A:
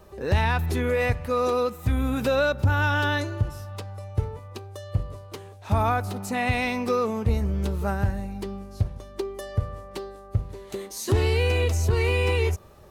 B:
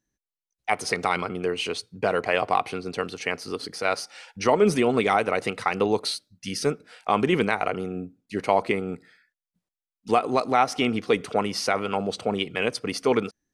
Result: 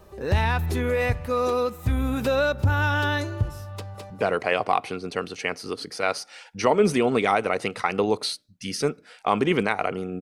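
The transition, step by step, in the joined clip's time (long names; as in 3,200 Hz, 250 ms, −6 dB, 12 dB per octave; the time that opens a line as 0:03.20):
A
0:03.73–0:04.10: delay throw 210 ms, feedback 30%, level −4.5 dB
0:04.10: continue with B from 0:01.92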